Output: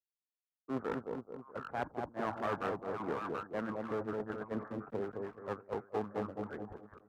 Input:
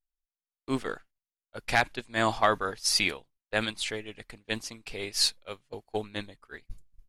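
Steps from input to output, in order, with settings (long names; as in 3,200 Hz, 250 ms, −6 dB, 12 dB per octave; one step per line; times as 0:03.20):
reversed playback
downward compressor 12 to 1, threshold −34 dBFS, peak gain reduction 17.5 dB
reversed playback
Butterworth low-pass 1,400 Hz 48 dB per octave
on a send: echo with a time of its own for lows and highs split 980 Hz, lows 212 ms, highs 730 ms, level −4 dB
on the sum: asymmetric clip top −43.5 dBFS
high-pass filter 100 Hz 12 dB per octave
downward expander −44 dBFS
multiband upward and downward compressor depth 40%
level +5.5 dB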